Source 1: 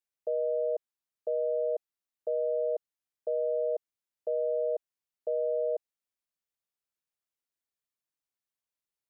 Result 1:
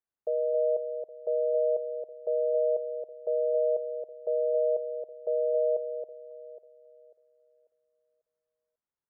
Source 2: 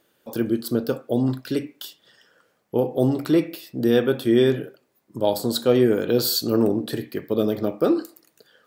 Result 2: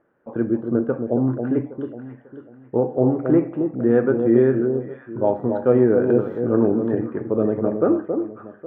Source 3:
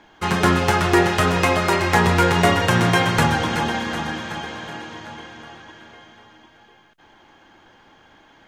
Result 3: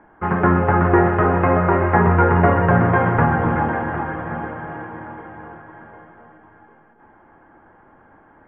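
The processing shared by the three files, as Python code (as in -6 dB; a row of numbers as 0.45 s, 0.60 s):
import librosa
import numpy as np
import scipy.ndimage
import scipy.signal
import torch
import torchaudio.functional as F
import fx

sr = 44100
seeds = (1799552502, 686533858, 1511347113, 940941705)

y = scipy.signal.sosfilt(scipy.signal.cheby2(4, 50, 4200.0, 'lowpass', fs=sr, output='sos'), x)
y = fx.echo_alternate(y, sr, ms=272, hz=1000.0, feedback_pct=55, wet_db=-6)
y = y * 10.0 ** (1.5 / 20.0)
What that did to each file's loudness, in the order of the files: +3.0 LU, +2.0 LU, +1.5 LU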